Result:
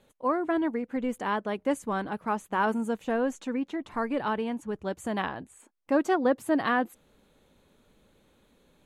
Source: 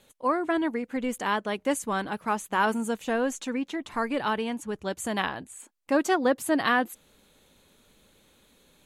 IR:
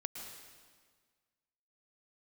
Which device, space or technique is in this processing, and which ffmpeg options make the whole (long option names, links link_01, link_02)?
through cloth: -af "highshelf=frequency=2200:gain=-11"